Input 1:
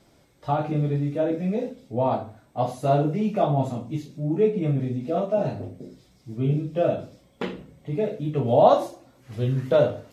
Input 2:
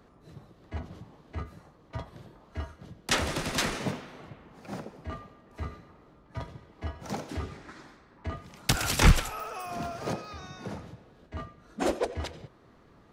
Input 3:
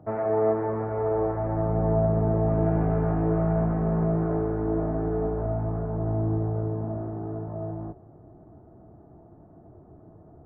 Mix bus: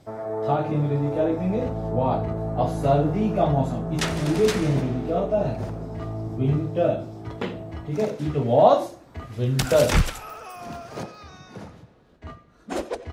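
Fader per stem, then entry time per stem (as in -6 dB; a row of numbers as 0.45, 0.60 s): +0.5, -1.0, -5.0 dB; 0.00, 0.90, 0.00 s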